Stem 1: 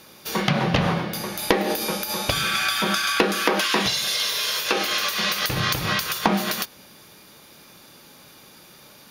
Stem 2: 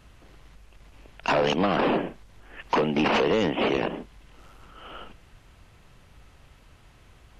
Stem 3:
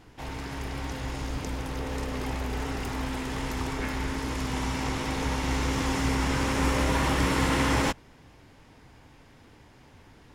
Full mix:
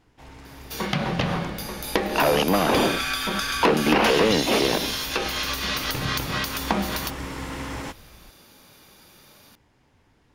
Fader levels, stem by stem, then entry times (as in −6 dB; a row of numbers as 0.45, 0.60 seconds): −4.0, +2.5, −8.5 decibels; 0.45, 0.90, 0.00 seconds